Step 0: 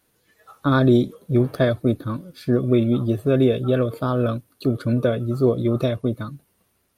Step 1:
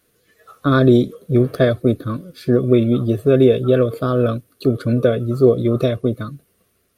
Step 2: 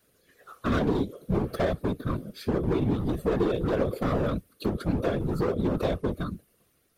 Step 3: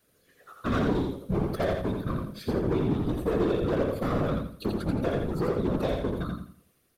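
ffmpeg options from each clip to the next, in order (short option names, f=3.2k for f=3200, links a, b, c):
-af "superequalizer=7b=1.58:9b=0.355,volume=3dB"
-af "acompressor=threshold=-16dB:ratio=3,asoftclip=type=hard:threshold=-18dB,afftfilt=real='hypot(re,im)*cos(2*PI*random(0))':imag='hypot(re,im)*sin(2*PI*random(1))':win_size=512:overlap=0.75,volume=2dB"
-af "aecho=1:1:84|168|252|336:0.631|0.202|0.0646|0.0207,volume=-2dB"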